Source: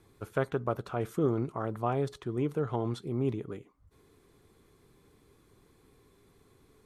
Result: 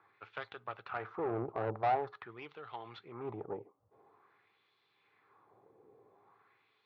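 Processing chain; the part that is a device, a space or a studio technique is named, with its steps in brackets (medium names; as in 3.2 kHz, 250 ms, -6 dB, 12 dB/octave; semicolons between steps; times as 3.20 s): wah-wah guitar rig (wah-wah 0.47 Hz 480–3500 Hz, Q 2.1; valve stage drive 38 dB, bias 0.55; cabinet simulation 100–3900 Hz, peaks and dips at 110 Hz +10 dB, 260 Hz -4 dB, 810 Hz +8 dB, 1.2 kHz +3 dB, 3.2 kHz -5 dB); trim +8 dB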